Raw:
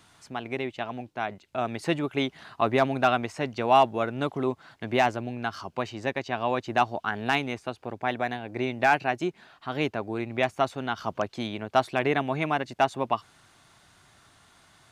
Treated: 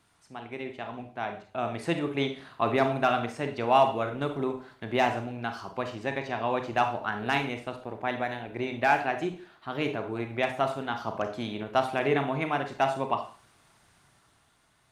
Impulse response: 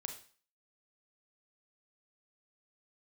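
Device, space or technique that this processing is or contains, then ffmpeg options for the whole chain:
speakerphone in a meeting room: -filter_complex "[1:a]atrim=start_sample=2205[s0];[0:a][s0]afir=irnorm=-1:irlink=0,dynaudnorm=f=140:g=13:m=1.88,volume=0.596" -ar 48000 -c:a libopus -b:a 32k

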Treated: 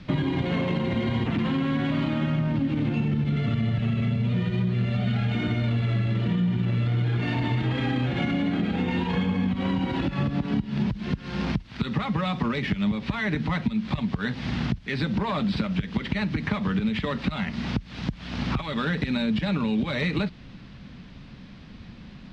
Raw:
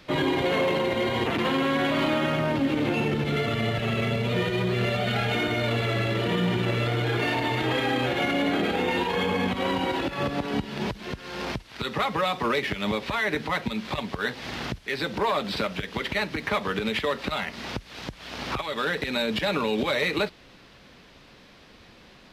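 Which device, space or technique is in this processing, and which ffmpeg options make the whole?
jukebox: -af "lowpass=5100,lowshelf=f=290:t=q:w=1.5:g=11.5,acompressor=threshold=0.0794:ratio=6"

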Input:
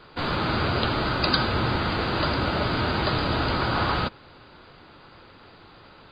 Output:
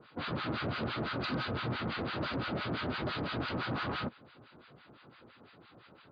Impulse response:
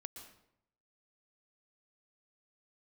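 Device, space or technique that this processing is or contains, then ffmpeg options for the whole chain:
guitar amplifier with harmonic tremolo: -filter_complex "[0:a]acrossover=split=1000[s0][s1];[s0]aeval=exprs='val(0)*(1-1/2+1/2*cos(2*PI*5.9*n/s))':c=same[s2];[s1]aeval=exprs='val(0)*(1-1/2-1/2*cos(2*PI*5.9*n/s))':c=same[s3];[s2][s3]amix=inputs=2:normalize=0,asoftclip=type=tanh:threshold=0.0501,highpass=100,equalizer=f=130:t=q:w=4:g=3,equalizer=f=240:t=q:w=4:g=4,equalizer=f=900:t=q:w=4:g=-4,lowpass=f=4100:w=0.5412,lowpass=f=4100:w=1.3066,volume=0.708"

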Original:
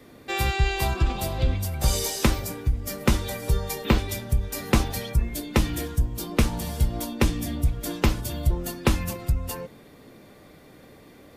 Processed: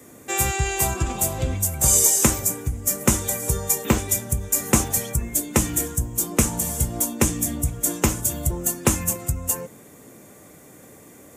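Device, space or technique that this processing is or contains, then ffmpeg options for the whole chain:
budget condenser microphone: -af "highpass=77,highshelf=f=5600:t=q:w=3:g=9,volume=1.26"

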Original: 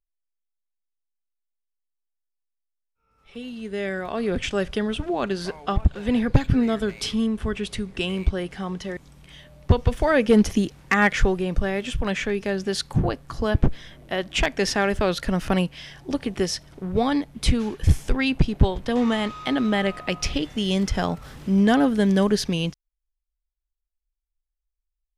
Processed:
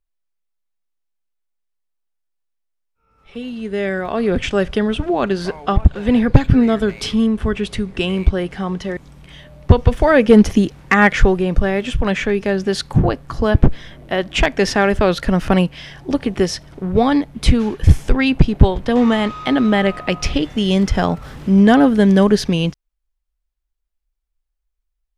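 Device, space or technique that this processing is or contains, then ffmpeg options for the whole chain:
behind a face mask: -af "highshelf=f=3500:g=-7,volume=2.37"

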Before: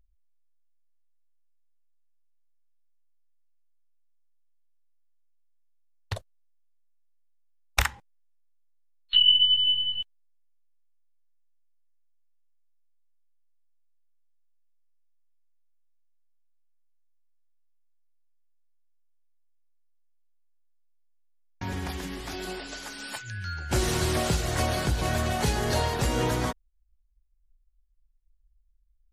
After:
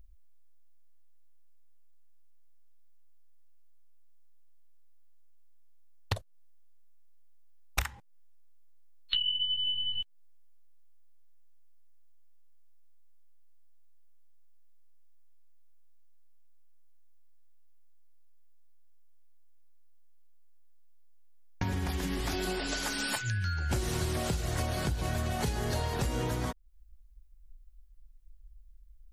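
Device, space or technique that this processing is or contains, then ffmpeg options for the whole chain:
ASMR close-microphone chain: -af "lowshelf=f=210:g=5.5,acompressor=threshold=0.0158:ratio=8,highshelf=f=12000:g=5.5,volume=2.24"

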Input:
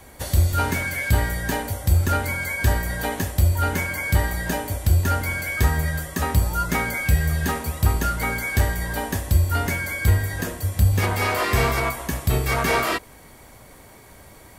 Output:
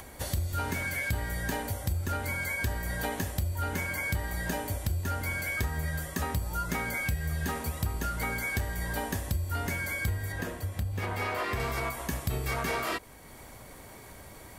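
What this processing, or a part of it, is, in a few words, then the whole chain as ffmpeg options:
upward and downward compression: -filter_complex "[0:a]acompressor=mode=upward:threshold=0.0141:ratio=2.5,acompressor=threshold=0.0708:ratio=6,asettb=1/sr,asplit=3[s0][s1][s2];[s0]atrim=end=10.324[s3];[s1]atrim=start=10.32:end=11.6,asetpts=PTS-STARTPTS,afade=t=in:d=0.004:c=qsin,afade=t=out:st=1.276:d=0.004:c=qsin,bass=f=250:g=-2,treble=f=4000:g=-7[s4];[s2]atrim=start=11.596[s5];[s3][s4]acrossfade=d=0.004:c1=hsin:c2=qsin[s6];[s6][s5]acrossfade=d=0.004:c1=qsin:c2=hsin,volume=0.596"

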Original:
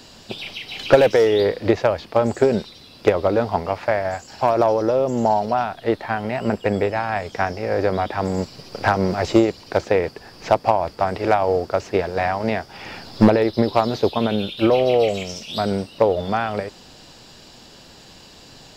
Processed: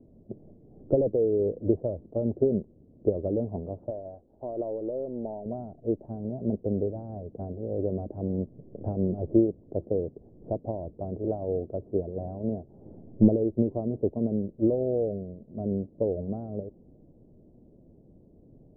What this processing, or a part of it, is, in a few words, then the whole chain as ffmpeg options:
under water: -filter_complex "[0:a]lowpass=f=1700:w=0.5412,lowpass=f=1700:w=1.3066,asettb=1/sr,asplit=3[s0][s1][s2];[s0]atrim=end=3.904[s3];[s1]atrim=start=3.9:end=5.46,asetpts=PTS-STARTPTS,afade=t=in:d=0.004:c=qsin,afade=t=out:st=1.556:d=0.004:c=qsin,equalizer=f=130:t=o:w=2.3:g=-12.5[s4];[s2]atrim=start=5.456[s5];[s3][s4]acrossfade=d=0.004:c1=hsin:c2=qsin[s6];[s6][s5]acrossfade=d=0.004:c1=qsin:c2=hsin,lowpass=f=410:w=0.5412,lowpass=f=410:w=1.3066,equalizer=f=630:t=o:w=0.39:g=7,volume=0.562"

